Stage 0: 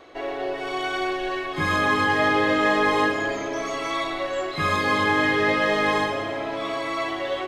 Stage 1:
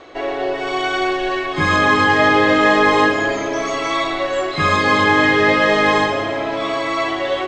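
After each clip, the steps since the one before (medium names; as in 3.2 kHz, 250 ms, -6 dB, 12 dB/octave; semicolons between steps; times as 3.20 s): steep low-pass 8.4 kHz 72 dB/octave; trim +7 dB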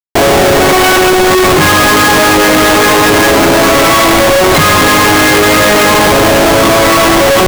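in parallel at +2.5 dB: peak limiter -13.5 dBFS, peak gain reduction 11.5 dB; on the sum: Schmitt trigger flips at -20 dBFS; trim +5.5 dB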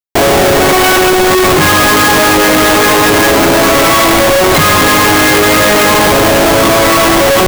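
treble shelf 12 kHz +4.5 dB; trim -1 dB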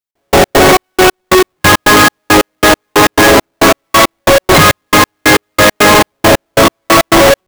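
trance gate "x..x.xx..x.." 137 bpm -60 dB; in parallel at -11.5 dB: integer overflow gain 4.5 dB; on the sum: trim +1 dB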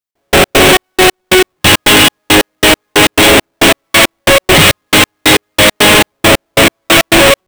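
self-modulated delay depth 0.25 ms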